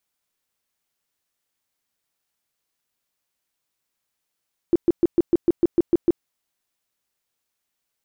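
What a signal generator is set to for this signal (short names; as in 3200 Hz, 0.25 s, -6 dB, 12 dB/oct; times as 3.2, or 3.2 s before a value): tone bursts 342 Hz, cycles 9, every 0.15 s, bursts 10, -11.5 dBFS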